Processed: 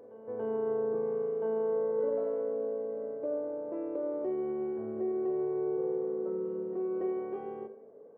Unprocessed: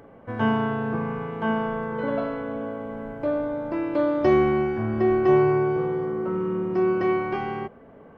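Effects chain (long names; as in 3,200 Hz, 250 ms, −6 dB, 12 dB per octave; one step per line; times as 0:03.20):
brickwall limiter −18 dBFS, peak gain reduction 8.5 dB
resonant band-pass 460 Hz, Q 4.6
echo ahead of the sound 285 ms −16.5 dB
four-comb reverb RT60 0.68 s, combs from 28 ms, DRR 11 dB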